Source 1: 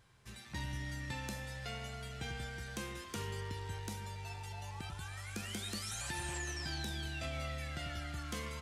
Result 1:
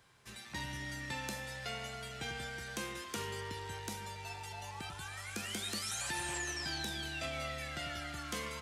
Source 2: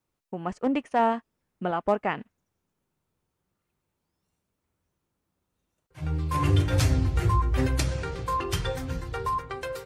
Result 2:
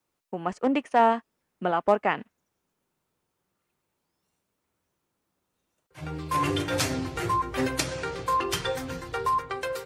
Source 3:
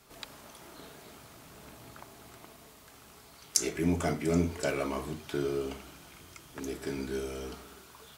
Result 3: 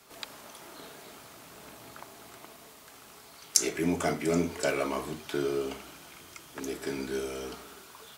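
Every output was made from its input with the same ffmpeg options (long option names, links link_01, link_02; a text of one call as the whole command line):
ffmpeg -i in.wav -filter_complex "[0:a]lowshelf=frequency=150:gain=-12,acrossover=split=130|1300[link_01][link_02][link_03];[link_01]acompressor=threshold=-47dB:ratio=6[link_04];[link_04][link_02][link_03]amix=inputs=3:normalize=0,volume=3.5dB" out.wav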